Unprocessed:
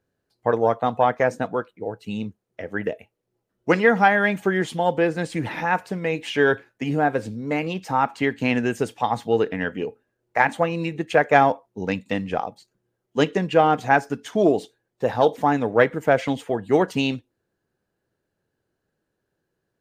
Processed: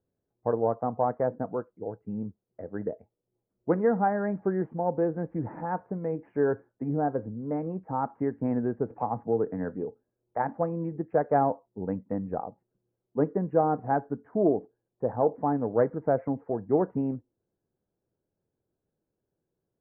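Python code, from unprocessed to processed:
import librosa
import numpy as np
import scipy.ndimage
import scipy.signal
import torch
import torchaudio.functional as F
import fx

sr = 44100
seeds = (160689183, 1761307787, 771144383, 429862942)

y = scipy.ndimage.gaussian_filter1d(x, 8.0, mode='constant')
y = fx.band_squash(y, sr, depth_pct=40, at=(8.9, 9.75))
y = y * librosa.db_to_amplitude(-4.5)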